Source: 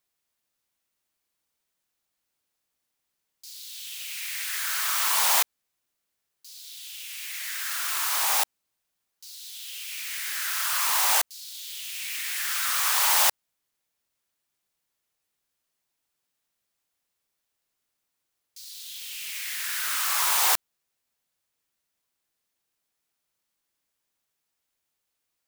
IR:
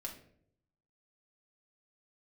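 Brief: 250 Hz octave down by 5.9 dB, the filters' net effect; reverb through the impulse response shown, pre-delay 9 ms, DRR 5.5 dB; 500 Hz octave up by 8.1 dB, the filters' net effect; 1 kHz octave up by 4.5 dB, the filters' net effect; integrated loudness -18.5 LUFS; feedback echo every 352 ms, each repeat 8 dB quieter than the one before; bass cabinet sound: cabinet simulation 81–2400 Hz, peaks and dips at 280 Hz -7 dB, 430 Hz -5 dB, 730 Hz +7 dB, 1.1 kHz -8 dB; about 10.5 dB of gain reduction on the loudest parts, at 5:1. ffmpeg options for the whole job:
-filter_complex "[0:a]equalizer=f=250:t=o:g=-9,equalizer=f=500:t=o:g=7,equalizer=f=1000:t=o:g=5,acompressor=threshold=0.0398:ratio=5,aecho=1:1:352|704|1056|1408|1760:0.398|0.159|0.0637|0.0255|0.0102,asplit=2[s0][s1];[1:a]atrim=start_sample=2205,adelay=9[s2];[s1][s2]afir=irnorm=-1:irlink=0,volume=0.668[s3];[s0][s3]amix=inputs=2:normalize=0,highpass=f=81:w=0.5412,highpass=f=81:w=1.3066,equalizer=f=280:t=q:w=4:g=-7,equalizer=f=430:t=q:w=4:g=-5,equalizer=f=730:t=q:w=4:g=7,equalizer=f=1100:t=q:w=4:g=-8,lowpass=f=2400:w=0.5412,lowpass=f=2400:w=1.3066,volume=7.94"

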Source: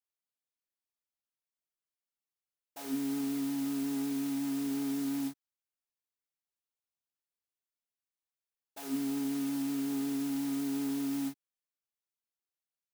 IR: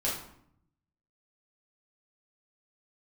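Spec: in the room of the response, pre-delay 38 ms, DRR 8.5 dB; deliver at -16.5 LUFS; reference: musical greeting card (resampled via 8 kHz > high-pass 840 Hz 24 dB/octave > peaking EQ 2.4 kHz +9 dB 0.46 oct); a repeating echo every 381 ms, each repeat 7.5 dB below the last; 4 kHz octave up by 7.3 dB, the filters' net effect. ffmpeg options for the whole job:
-filter_complex "[0:a]equalizer=f=4000:t=o:g=7.5,aecho=1:1:381|762|1143|1524|1905:0.422|0.177|0.0744|0.0312|0.0131,asplit=2[s0][s1];[1:a]atrim=start_sample=2205,adelay=38[s2];[s1][s2]afir=irnorm=-1:irlink=0,volume=0.168[s3];[s0][s3]amix=inputs=2:normalize=0,aresample=8000,aresample=44100,highpass=f=840:w=0.5412,highpass=f=840:w=1.3066,equalizer=f=2400:t=o:w=0.46:g=9,volume=25.1"

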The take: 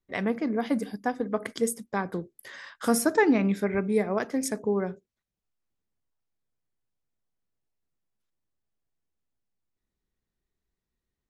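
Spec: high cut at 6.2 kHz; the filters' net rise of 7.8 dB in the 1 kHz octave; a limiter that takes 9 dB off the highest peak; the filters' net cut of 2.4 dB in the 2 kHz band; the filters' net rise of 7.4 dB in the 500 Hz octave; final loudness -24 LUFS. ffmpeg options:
-af "lowpass=6200,equalizer=f=500:t=o:g=7.5,equalizer=f=1000:t=o:g=8.5,equalizer=f=2000:t=o:g=-6.5,volume=1.12,alimiter=limit=0.266:level=0:latency=1"

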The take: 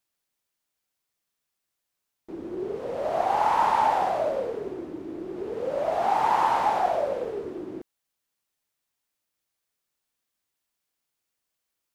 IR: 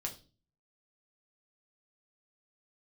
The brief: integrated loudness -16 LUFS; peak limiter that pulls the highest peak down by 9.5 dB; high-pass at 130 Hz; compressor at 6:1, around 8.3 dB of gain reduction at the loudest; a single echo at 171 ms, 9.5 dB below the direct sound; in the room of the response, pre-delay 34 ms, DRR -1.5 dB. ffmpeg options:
-filter_complex "[0:a]highpass=130,acompressor=threshold=0.0447:ratio=6,alimiter=level_in=1.41:limit=0.0631:level=0:latency=1,volume=0.708,aecho=1:1:171:0.335,asplit=2[s0][s1];[1:a]atrim=start_sample=2205,adelay=34[s2];[s1][s2]afir=irnorm=-1:irlink=0,volume=1.19[s3];[s0][s3]amix=inputs=2:normalize=0,volume=5.96"

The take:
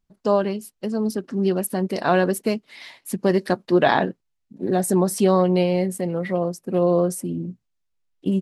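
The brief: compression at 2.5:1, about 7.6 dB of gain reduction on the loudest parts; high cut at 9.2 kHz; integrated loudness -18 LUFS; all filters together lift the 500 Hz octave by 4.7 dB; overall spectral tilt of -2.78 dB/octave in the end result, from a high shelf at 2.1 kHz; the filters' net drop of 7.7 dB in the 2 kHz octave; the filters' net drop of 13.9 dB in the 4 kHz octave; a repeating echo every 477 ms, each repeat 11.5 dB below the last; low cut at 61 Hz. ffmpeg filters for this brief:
-af "highpass=61,lowpass=9200,equalizer=f=500:t=o:g=7,equalizer=f=2000:t=o:g=-4.5,highshelf=f=2100:g=-9,equalizer=f=4000:t=o:g=-8,acompressor=threshold=0.0891:ratio=2.5,aecho=1:1:477|954|1431:0.266|0.0718|0.0194,volume=2.11"

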